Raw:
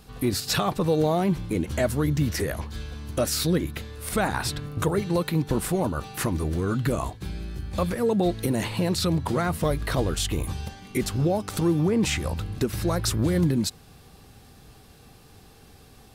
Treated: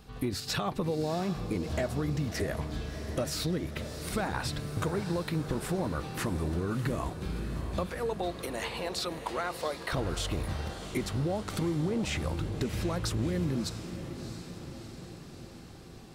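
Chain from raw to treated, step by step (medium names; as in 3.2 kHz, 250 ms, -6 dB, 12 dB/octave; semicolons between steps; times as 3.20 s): 7.86–9.93 s: high-pass 560 Hz 12 dB/octave; compression, threshold -25 dBFS, peak gain reduction 7.5 dB; peaking EQ 13 kHz -8 dB 1.3 oct; echo that smears into a reverb 677 ms, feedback 64%, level -10.5 dB; trim -2.5 dB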